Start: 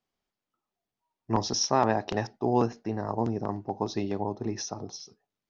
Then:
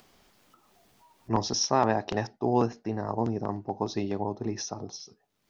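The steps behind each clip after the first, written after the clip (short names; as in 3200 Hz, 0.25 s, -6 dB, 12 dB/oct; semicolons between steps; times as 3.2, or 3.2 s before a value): upward compressor, threshold -41 dBFS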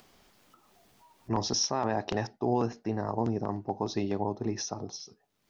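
limiter -17 dBFS, peak gain reduction 8 dB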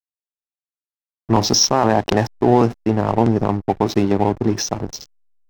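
AGC gain up to 12 dB; backlash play -23.5 dBFS; gain +2.5 dB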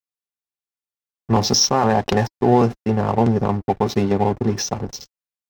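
notch comb 320 Hz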